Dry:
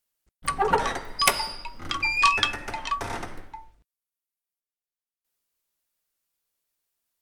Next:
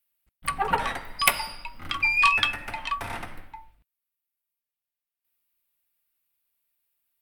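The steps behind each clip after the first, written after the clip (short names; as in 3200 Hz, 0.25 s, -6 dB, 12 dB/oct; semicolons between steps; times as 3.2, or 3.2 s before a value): fifteen-band EQ 400 Hz -8 dB, 2500 Hz +5 dB, 6300 Hz -10 dB, 16000 Hz +9 dB; gain -1.5 dB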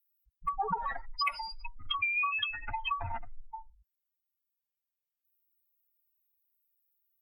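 spectral contrast raised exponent 2.9; compressor 16:1, threshold -28 dBFS, peak gain reduction 14.5 dB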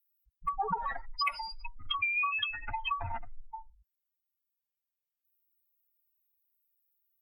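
nothing audible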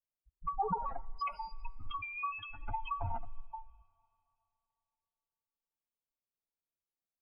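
running mean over 24 samples; on a send at -23.5 dB: reverb RT60 3.1 s, pre-delay 7 ms; on the sum: gain +2 dB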